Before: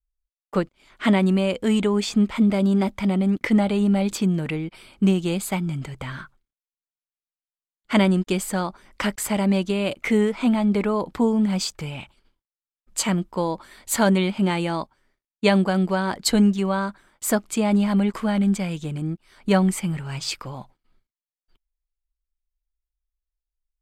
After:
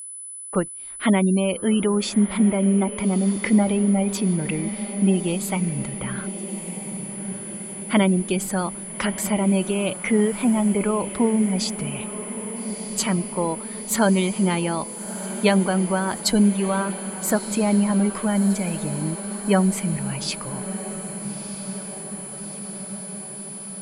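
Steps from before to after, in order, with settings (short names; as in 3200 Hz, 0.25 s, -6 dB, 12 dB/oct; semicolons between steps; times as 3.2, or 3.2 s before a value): spectral gate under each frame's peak -30 dB strong; diffused feedback echo 1.291 s, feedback 69%, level -12.5 dB; whine 10000 Hz -34 dBFS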